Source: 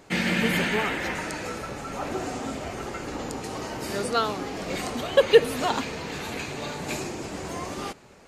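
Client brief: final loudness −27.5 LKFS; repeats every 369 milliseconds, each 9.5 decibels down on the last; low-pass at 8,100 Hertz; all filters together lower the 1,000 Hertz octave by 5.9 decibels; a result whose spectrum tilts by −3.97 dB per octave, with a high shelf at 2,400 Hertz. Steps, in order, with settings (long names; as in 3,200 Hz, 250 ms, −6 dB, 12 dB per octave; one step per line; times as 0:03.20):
low-pass filter 8,100 Hz
parametric band 1,000 Hz −7.5 dB
high-shelf EQ 2,400 Hz −4.5 dB
repeating echo 369 ms, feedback 33%, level −9.5 dB
level +1.5 dB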